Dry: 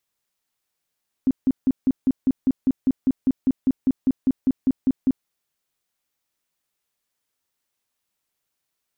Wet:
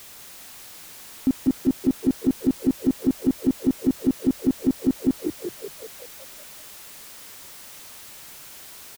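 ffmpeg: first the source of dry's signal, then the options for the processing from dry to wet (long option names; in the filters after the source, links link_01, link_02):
-f lavfi -i "aevalsrc='0.2*sin(2*PI*262*mod(t,0.2))*lt(mod(t,0.2),10/262)':duration=4:sample_rate=44100"
-filter_complex "[0:a]aeval=exprs='val(0)+0.5*0.0133*sgn(val(0))':channel_layout=same,asplit=9[link_01][link_02][link_03][link_04][link_05][link_06][link_07][link_08][link_09];[link_02]adelay=189,afreqshift=45,volume=-7.5dB[link_10];[link_03]adelay=378,afreqshift=90,volume=-12.1dB[link_11];[link_04]adelay=567,afreqshift=135,volume=-16.7dB[link_12];[link_05]adelay=756,afreqshift=180,volume=-21.2dB[link_13];[link_06]adelay=945,afreqshift=225,volume=-25.8dB[link_14];[link_07]adelay=1134,afreqshift=270,volume=-30.4dB[link_15];[link_08]adelay=1323,afreqshift=315,volume=-35dB[link_16];[link_09]adelay=1512,afreqshift=360,volume=-39.6dB[link_17];[link_01][link_10][link_11][link_12][link_13][link_14][link_15][link_16][link_17]amix=inputs=9:normalize=0"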